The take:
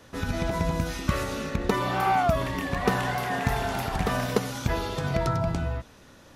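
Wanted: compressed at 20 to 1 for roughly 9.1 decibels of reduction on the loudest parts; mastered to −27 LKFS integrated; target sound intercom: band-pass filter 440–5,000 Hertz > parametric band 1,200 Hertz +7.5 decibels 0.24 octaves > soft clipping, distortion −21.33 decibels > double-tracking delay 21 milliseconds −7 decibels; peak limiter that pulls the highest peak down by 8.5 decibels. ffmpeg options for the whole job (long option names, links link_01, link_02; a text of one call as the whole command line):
ffmpeg -i in.wav -filter_complex "[0:a]acompressor=threshold=-28dB:ratio=20,alimiter=limit=-24dB:level=0:latency=1,highpass=440,lowpass=5000,equalizer=frequency=1200:width_type=o:width=0.24:gain=7.5,asoftclip=threshold=-26dB,asplit=2[link_01][link_02];[link_02]adelay=21,volume=-7dB[link_03];[link_01][link_03]amix=inputs=2:normalize=0,volume=8.5dB" out.wav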